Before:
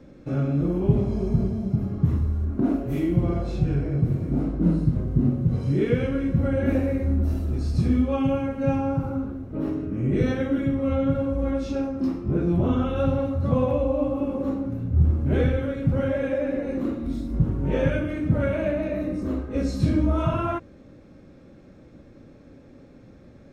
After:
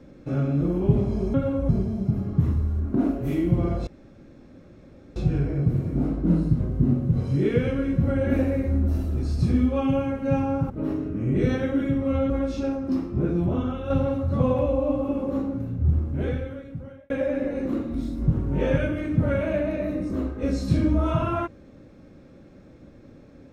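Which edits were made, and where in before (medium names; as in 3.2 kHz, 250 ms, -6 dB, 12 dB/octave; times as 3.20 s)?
3.52 s: insert room tone 1.29 s
9.06–9.47 s: delete
11.07–11.42 s: move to 1.34 s
12.29–13.02 s: fade out, to -7 dB
14.66–16.22 s: fade out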